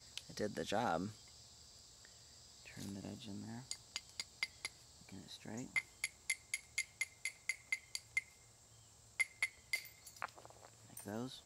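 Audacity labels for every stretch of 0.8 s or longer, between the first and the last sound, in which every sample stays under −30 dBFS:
0.970000	3.710000	silence
4.660000	5.760000	silence
8.180000	9.200000	silence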